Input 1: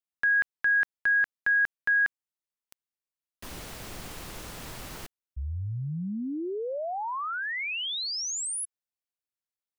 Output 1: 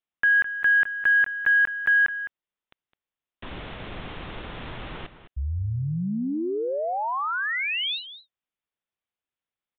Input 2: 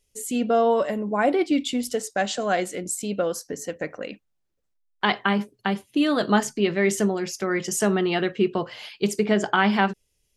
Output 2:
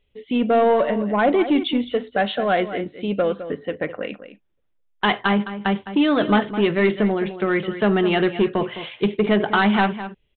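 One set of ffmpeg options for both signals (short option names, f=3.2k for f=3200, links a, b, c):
-filter_complex "[0:a]aresample=8000,asoftclip=type=tanh:threshold=-15dB,aresample=44100,asplit=2[a][b];[b]adelay=209.9,volume=-12dB,highshelf=f=4k:g=-4.72[c];[a][c]amix=inputs=2:normalize=0,volume=5dB"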